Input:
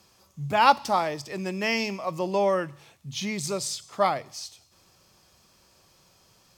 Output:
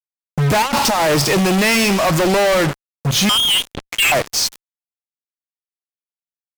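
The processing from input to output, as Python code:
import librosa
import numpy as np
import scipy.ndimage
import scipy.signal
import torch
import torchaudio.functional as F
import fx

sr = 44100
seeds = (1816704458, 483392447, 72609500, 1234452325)

y = fx.over_compress(x, sr, threshold_db=-32.0, ratio=-1.0, at=(0.62, 1.63))
y = fx.freq_invert(y, sr, carrier_hz=3400, at=(3.29, 4.12))
y = fx.fuzz(y, sr, gain_db=47.0, gate_db=-42.0)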